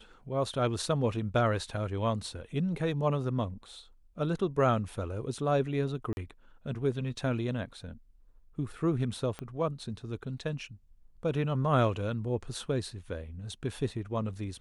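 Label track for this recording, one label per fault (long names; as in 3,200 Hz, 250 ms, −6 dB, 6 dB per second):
6.130000	6.170000	drop-out 41 ms
9.390000	9.390000	click −24 dBFS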